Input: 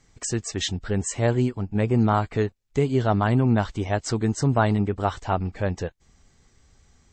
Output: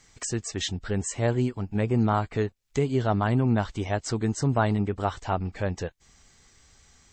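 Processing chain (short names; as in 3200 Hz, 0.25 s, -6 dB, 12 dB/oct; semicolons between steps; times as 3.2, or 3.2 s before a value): mismatched tape noise reduction encoder only; gain -3 dB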